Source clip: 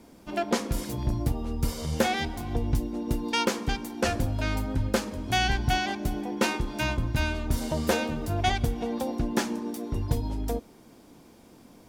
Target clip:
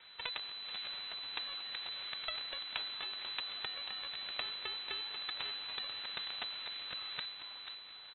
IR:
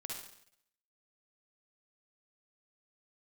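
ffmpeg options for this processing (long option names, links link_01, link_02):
-filter_complex "[0:a]highpass=1000,highshelf=frequency=2400:gain=-10.5,aecho=1:1:5.3:0.96,alimiter=level_in=2dB:limit=-24dB:level=0:latency=1:release=32,volume=-2dB,acompressor=threshold=-46dB:ratio=5,aeval=exprs='0.0299*(cos(1*acos(clip(val(0)/0.0299,-1,1)))-cos(1*PI/2))+0.0119*(cos(2*acos(clip(val(0)/0.0299,-1,1)))-cos(2*PI/2))+0.0075*(cos(7*acos(clip(val(0)/0.0299,-1,1)))-cos(7*PI/2))':channel_layout=same,asetrate=64386,aresample=44100,asplit=6[link_01][link_02][link_03][link_04][link_05][link_06];[link_02]adelay=489,afreqshift=130,volume=-6dB[link_07];[link_03]adelay=978,afreqshift=260,volume=-13.5dB[link_08];[link_04]adelay=1467,afreqshift=390,volume=-21.1dB[link_09];[link_05]adelay=1956,afreqshift=520,volume=-28.6dB[link_10];[link_06]adelay=2445,afreqshift=650,volume=-36.1dB[link_11];[link_01][link_07][link_08][link_09][link_10][link_11]amix=inputs=6:normalize=0,aeval=exprs='abs(val(0))':channel_layout=same,lowpass=frequency=3400:width_type=q:width=0.5098,lowpass=frequency=3400:width_type=q:width=0.6013,lowpass=frequency=3400:width_type=q:width=0.9,lowpass=frequency=3400:width_type=q:width=2.563,afreqshift=-4000,volume=12dB"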